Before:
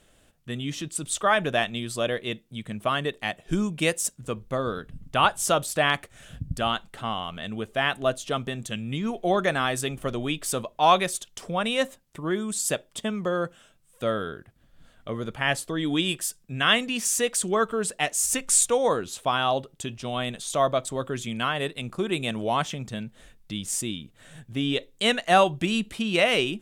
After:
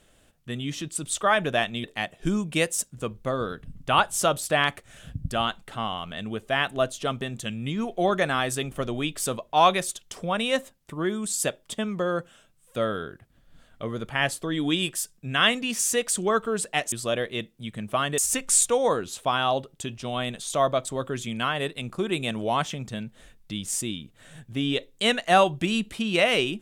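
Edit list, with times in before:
1.84–3.1 move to 18.18

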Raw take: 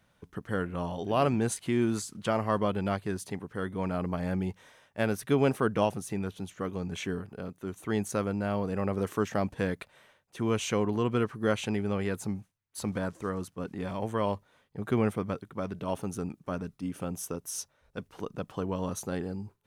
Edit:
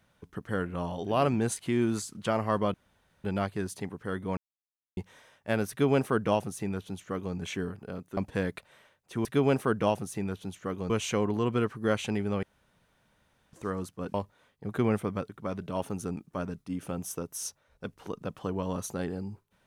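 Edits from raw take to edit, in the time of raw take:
2.74 insert room tone 0.50 s
3.87–4.47 mute
5.2–6.85 copy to 10.49
7.67–9.41 cut
12.02–13.12 room tone
13.73–14.27 cut

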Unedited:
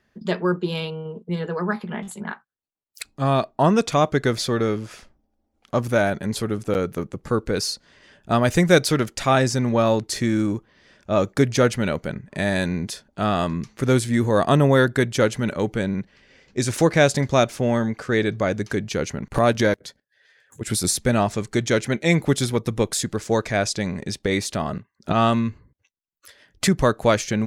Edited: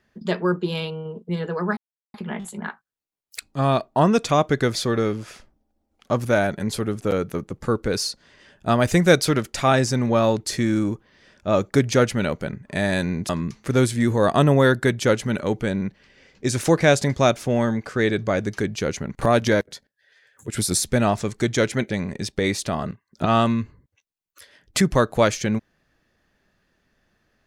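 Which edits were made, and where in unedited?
1.77 insert silence 0.37 s
12.92–13.42 cut
22.03–23.77 cut

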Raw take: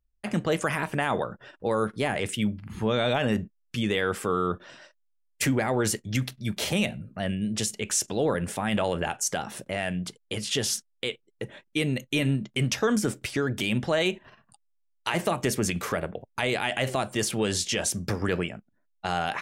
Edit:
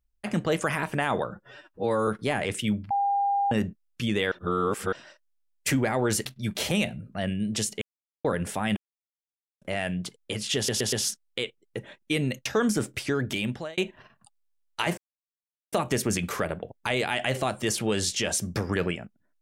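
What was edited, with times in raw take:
1.31–1.82 stretch 1.5×
2.65–3.26 bleep 802 Hz -21.5 dBFS
4.06–4.67 reverse
6–6.27 cut
7.83–8.26 mute
8.78–9.63 mute
10.58 stutter 0.12 s, 4 plays
12.11–12.73 cut
13.43–14.05 fade out equal-power
15.25 insert silence 0.75 s

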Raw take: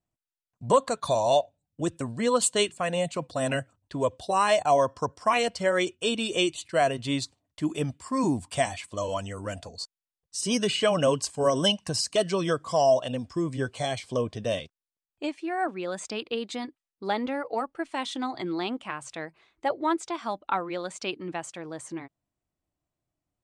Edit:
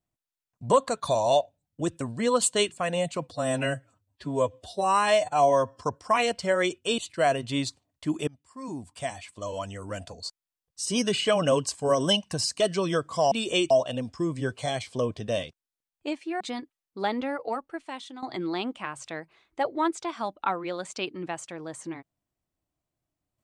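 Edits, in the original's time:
3.31–4.98 stretch 1.5×
6.15–6.54 move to 12.87
7.83–9.74 fade in, from -24 dB
15.57–16.46 cut
17.41–18.28 fade out, to -13.5 dB

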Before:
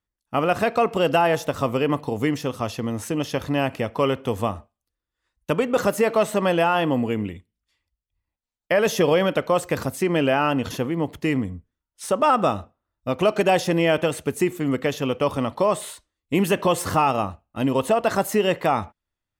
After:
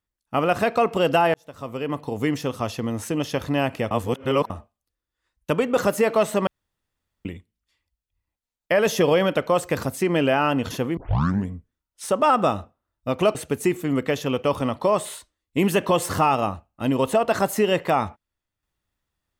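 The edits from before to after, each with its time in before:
1.34–2.36 fade in
3.91–4.5 reverse
6.47–7.25 room tone
10.97 tape start 0.51 s
13.35–14.11 cut

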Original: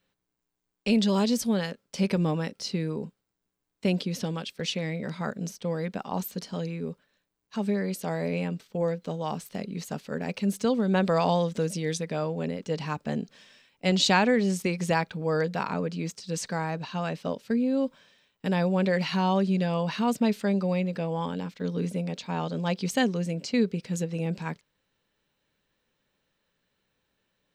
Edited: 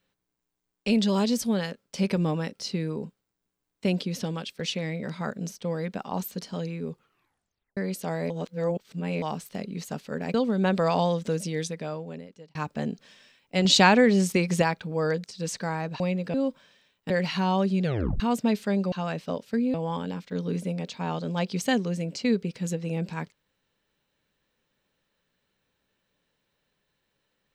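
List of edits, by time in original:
6.88 tape stop 0.89 s
8.3–9.22 reverse
10.34–10.64 cut
11.81–12.85 fade out
13.95–14.92 gain +4 dB
15.54–16.13 cut
16.89–17.71 swap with 20.69–21.03
18.47–18.87 cut
19.61 tape stop 0.36 s

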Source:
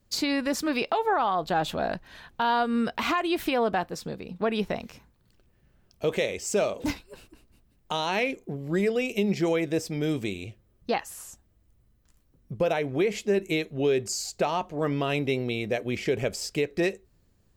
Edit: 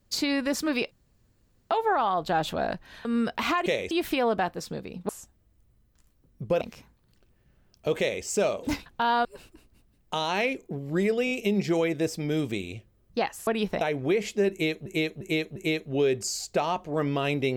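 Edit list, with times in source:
0.91 insert room tone 0.79 s
2.26–2.65 move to 7.03
4.44–4.78 swap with 11.19–12.71
6.16–6.41 copy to 3.26
9.03 stutter 0.02 s, 4 plays
13.41–13.76 loop, 4 plays

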